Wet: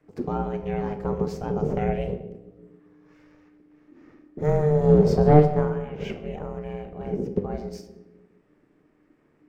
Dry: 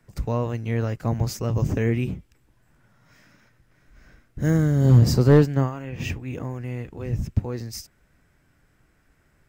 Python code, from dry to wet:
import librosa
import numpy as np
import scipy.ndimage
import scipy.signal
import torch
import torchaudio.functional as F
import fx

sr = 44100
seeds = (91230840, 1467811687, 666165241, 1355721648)

y = fx.lowpass(x, sr, hz=1700.0, slope=6)
y = fx.room_shoebox(y, sr, seeds[0], volume_m3=240.0, walls='mixed', distance_m=0.48)
y = y * np.sin(2.0 * np.pi * 300.0 * np.arange(len(y)) / sr)